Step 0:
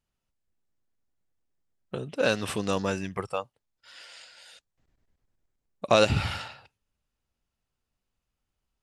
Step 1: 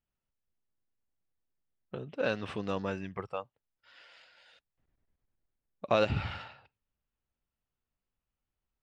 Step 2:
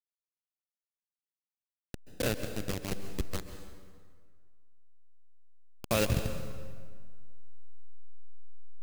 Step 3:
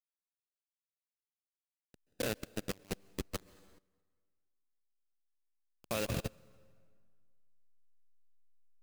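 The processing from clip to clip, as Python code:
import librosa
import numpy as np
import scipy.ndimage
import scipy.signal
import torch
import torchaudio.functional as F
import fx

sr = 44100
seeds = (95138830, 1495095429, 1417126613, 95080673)

y1 = scipy.signal.sosfilt(scipy.signal.butter(2, 3100.0, 'lowpass', fs=sr, output='sos'), x)
y1 = y1 * 10.0 ** (-6.0 / 20.0)
y2 = fx.delta_hold(y1, sr, step_db=-26.0)
y2 = fx.peak_eq(y2, sr, hz=880.0, db=-11.0, octaves=2.2)
y2 = fx.rev_plate(y2, sr, seeds[0], rt60_s=1.8, hf_ratio=0.75, predelay_ms=120, drr_db=8.5)
y2 = y2 * 10.0 ** (5.0 / 20.0)
y3 = fx.low_shelf(y2, sr, hz=84.0, db=-12.0)
y3 = fx.level_steps(y3, sr, step_db=18)
y3 = fx.upward_expand(y3, sr, threshold_db=-53.0, expansion=1.5)
y3 = y3 * 10.0 ** (2.5 / 20.0)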